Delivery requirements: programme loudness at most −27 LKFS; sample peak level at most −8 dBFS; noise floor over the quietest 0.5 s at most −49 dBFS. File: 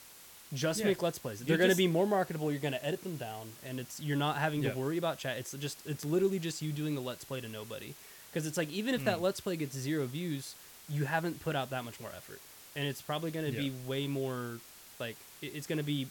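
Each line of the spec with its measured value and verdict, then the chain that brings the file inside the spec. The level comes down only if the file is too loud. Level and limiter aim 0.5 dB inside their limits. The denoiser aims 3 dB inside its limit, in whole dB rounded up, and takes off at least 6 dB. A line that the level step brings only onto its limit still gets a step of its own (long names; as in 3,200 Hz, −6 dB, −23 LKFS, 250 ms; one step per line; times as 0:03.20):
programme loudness −34.5 LKFS: in spec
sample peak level −12.0 dBFS: in spec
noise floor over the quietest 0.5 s −54 dBFS: in spec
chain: no processing needed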